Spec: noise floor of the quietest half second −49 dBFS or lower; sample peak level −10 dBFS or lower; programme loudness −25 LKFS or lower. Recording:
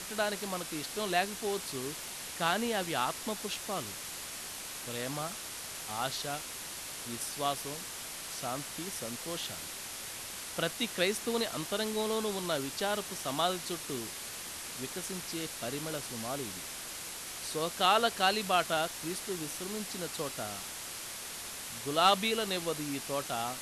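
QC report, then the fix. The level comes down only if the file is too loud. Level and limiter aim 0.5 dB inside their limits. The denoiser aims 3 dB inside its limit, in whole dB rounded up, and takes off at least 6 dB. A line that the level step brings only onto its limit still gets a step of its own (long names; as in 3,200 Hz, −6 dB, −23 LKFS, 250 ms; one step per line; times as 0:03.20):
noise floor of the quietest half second −42 dBFS: out of spec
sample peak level −14.0 dBFS: in spec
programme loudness −34.0 LKFS: in spec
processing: broadband denoise 10 dB, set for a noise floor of −42 dBFS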